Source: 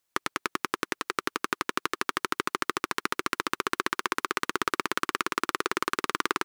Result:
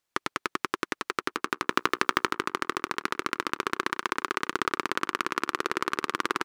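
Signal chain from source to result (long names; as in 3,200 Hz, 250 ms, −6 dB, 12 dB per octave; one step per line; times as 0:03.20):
high-shelf EQ 7,900 Hz −8.5 dB
0:01.69–0:02.31: transient designer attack +5 dB, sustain +9 dB
on a send: tape delay 97 ms, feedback 43%, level −15 dB, low-pass 1,700 Hz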